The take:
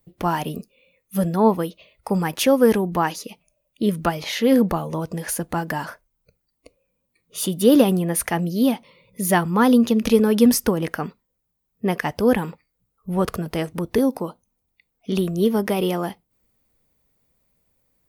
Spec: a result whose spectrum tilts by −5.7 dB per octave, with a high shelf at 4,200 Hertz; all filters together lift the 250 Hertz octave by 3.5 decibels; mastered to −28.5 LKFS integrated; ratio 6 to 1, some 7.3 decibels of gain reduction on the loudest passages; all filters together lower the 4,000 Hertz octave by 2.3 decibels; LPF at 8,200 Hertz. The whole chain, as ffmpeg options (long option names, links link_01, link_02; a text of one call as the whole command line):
ffmpeg -i in.wav -af "lowpass=8200,equalizer=frequency=250:width_type=o:gain=4,equalizer=frequency=4000:width_type=o:gain=-7.5,highshelf=frequency=4200:gain=7.5,acompressor=threshold=-15dB:ratio=6,volume=-6dB" out.wav